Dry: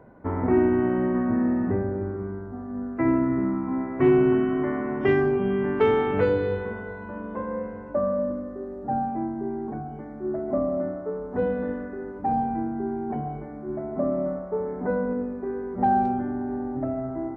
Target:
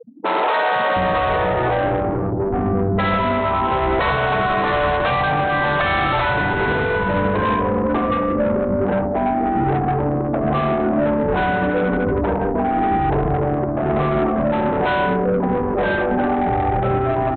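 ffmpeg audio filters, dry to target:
-filter_complex "[0:a]afftfilt=real='re*gte(hypot(re,im),0.02)':imag='im*gte(hypot(re,im),0.02)':win_size=1024:overlap=0.75,bandreject=f=50:t=h:w=6,bandreject=f=100:t=h:w=6,bandreject=f=150:t=h:w=6,bandreject=f=200:t=h:w=6,bandreject=f=250:t=h:w=6,bandreject=f=300:t=h:w=6,afftfilt=real='re*lt(hypot(re,im),0.158)':imag='im*lt(hypot(re,im),0.158)':win_size=1024:overlap=0.75,lowpass=1.8k,adynamicequalizer=threshold=0.00158:dfrequency=110:dqfactor=1.3:tfrequency=110:tqfactor=1.3:attack=5:release=100:ratio=0.375:range=1.5:mode=cutabove:tftype=bell,aresample=8000,asoftclip=type=tanh:threshold=-38.5dB,aresample=44100,acrossover=split=290[a][b];[a]adelay=720[c];[c][b]amix=inputs=2:normalize=0,alimiter=level_in=35dB:limit=-1dB:release=50:level=0:latency=1,volume=-9dB"

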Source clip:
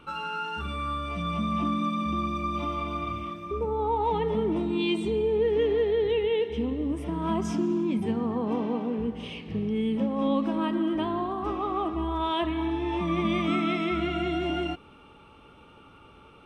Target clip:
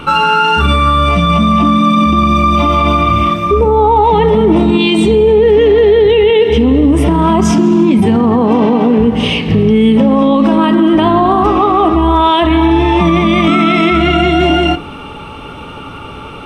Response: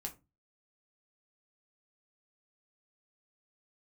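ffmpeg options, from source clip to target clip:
-filter_complex "[0:a]asplit=2[a][b];[1:a]atrim=start_sample=2205[c];[b][c]afir=irnorm=-1:irlink=0,volume=-7.5dB[d];[a][d]amix=inputs=2:normalize=0,alimiter=level_in=23.5dB:limit=-1dB:release=50:level=0:latency=1,volume=-1dB"

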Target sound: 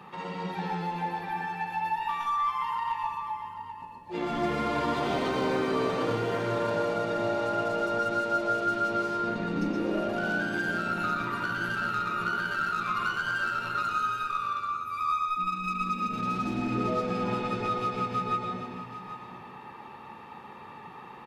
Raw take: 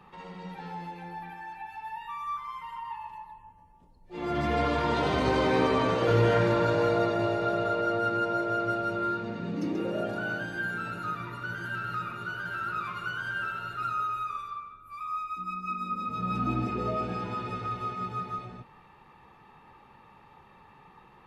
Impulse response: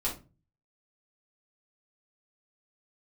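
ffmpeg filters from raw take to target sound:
-filter_complex "[0:a]highpass=130,asplit=2[a][b];[b]acrusher=bits=4:mix=0:aa=0.5,volume=-9.5dB[c];[a][c]amix=inputs=2:normalize=0,acompressor=threshold=-36dB:ratio=6,aecho=1:1:784:0.251,asplit=2[d][e];[1:a]atrim=start_sample=2205,lowpass=8.8k,adelay=112[f];[e][f]afir=irnorm=-1:irlink=0,volume=-7.5dB[g];[d][g]amix=inputs=2:normalize=0,volume=7dB"

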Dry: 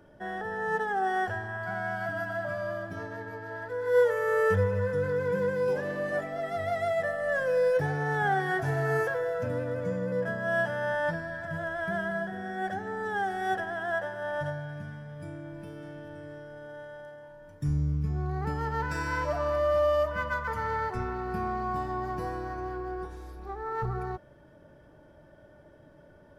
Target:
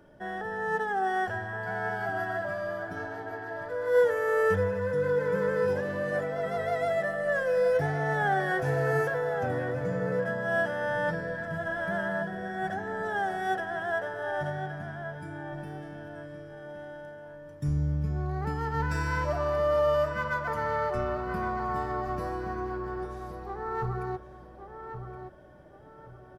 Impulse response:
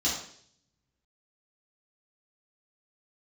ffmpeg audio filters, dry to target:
-filter_complex "[0:a]bandreject=f=50:t=h:w=6,bandreject=f=100:t=h:w=6,asplit=2[a][b];[b]adelay=1120,lowpass=f=2.9k:p=1,volume=-8.5dB,asplit=2[c][d];[d]adelay=1120,lowpass=f=2.9k:p=1,volume=0.31,asplit=2[e][f];[f]adelay=1120,lowpass=f=2.9k:p=1,volume=0.31,asplit=2[g][h];[h]adelay=1120,lowpass=f=2.9k:p=1,volume=0.31[i];[a][c][e][g][i]amix=inputs=5:normalize=0"

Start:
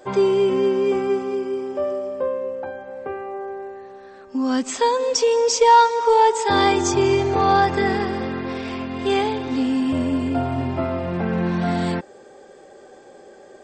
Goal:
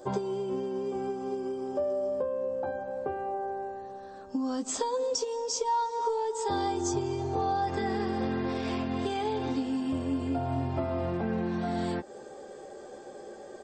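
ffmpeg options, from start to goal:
-filter_complex "[0:a]asetnsamples=n=441:p=0,asendcmd='7.67 equalizer g -5.5',equalizer=f=2.2k:t=o:w=1.2:g=-13.5,acompressor=threshold=-27dB:ratio=12,asplit=2[a][b];[b]adelay=14,volume=-7dB[c];[a][c]amix=inputs=2:normalize=0"

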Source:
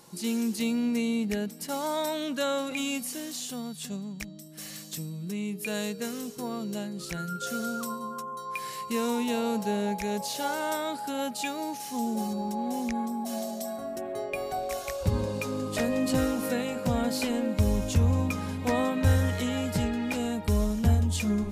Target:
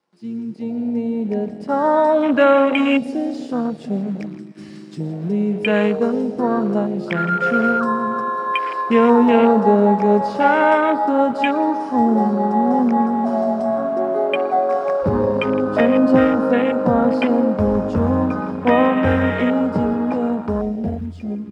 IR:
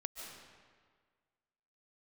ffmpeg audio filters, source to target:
-filter_complex "[0:a]equalizer=f=5k:t=o:w=0.25:g=11.5,acrusher=bits=8:dc=4:mix=0:aa=0.000001,highpass=40,aecho=1:1:163:0.2,dynaudnorm=f=240:g=13:m=14.5dB,asplit=2[a][b];[1:a]atrim=start_sample=2205,adelay=118[c];[b][c]afir=irnorm=-1:irlink=0,volume=-12.5dB[d];[a][d]amix=inputs=2:normalize=0,aresample=22050,aresample=44100,acrusher=bits=5:mode=log:mix=0:aa=0.000001,acrossover=split=180 2900:gain=0.158 1 0.126[e][f][g];[e][f][g]amix=inputs=3:normalize=0,afwtdn=0.0501,volume=3.5dB"

